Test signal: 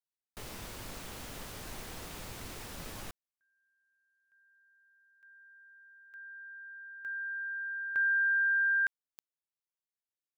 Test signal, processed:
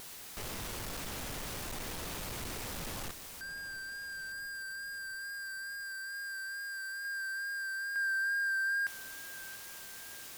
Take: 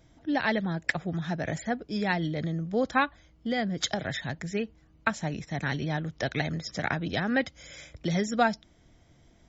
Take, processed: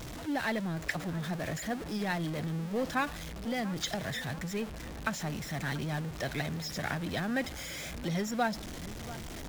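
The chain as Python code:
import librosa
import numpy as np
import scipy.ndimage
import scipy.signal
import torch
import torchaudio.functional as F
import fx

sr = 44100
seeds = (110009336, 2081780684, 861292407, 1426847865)

y = x + 0.5 * 10.0 ** (-29.0 / 20.0) * np.sign(x)
y = fx.echo_filtered(y, sr, ms=686, feedback_pct=56, hz=2000.0, wet_db=-16.0)
y = fx.vibrato(y, sr, rate_hz=2.3, depth_cents=24.0)
y = y * librosa.db_to_amplitude(-7.5)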